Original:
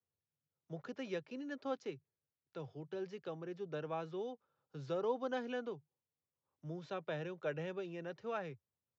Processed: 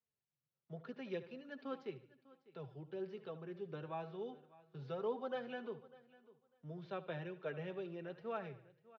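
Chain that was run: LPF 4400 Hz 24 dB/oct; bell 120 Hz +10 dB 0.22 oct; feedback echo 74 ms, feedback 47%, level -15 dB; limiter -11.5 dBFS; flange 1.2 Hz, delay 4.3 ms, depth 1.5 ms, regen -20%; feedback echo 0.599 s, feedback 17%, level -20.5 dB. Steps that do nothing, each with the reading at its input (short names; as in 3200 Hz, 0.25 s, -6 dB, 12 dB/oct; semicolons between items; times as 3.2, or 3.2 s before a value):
limiter -11.5 dBFS: input peak -25.0 dBFS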